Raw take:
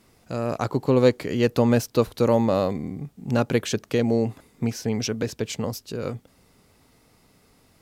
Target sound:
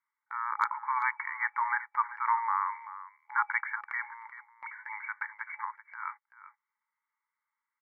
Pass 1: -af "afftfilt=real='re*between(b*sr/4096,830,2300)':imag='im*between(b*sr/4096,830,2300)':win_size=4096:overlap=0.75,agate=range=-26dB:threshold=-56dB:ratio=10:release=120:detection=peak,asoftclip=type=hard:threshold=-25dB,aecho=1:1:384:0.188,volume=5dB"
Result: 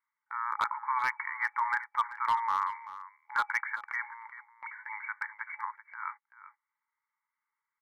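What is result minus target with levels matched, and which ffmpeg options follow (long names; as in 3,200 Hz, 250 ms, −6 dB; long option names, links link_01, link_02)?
hard clipping: distortion +18 dB
-af "afftfilt=real='re*between(b*sr/4096,830,2300)':imag='im*between(b*sr/4096,830,2300)':win_size=4096:overlap=0.75,agate=range=-26dB:threshold=-56dB:ratio=10:release=120:detection=peak,asoftclip=type=hard:threshold=-19dB,aecho=1:1:384:0.188,volume=5dB"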